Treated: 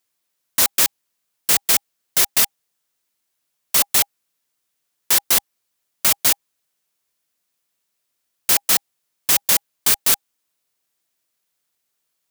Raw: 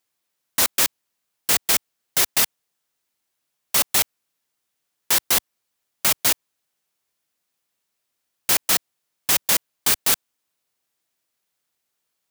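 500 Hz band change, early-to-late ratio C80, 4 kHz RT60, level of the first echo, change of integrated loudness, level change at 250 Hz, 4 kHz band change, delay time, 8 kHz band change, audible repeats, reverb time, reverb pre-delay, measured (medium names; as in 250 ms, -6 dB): 0.0 dB, no reverb, no reverb, no echo, +3.0 dB, 0.0 dB, +1.5 dB, no echo, +2.5 dB, no echo, no reverb, no reverb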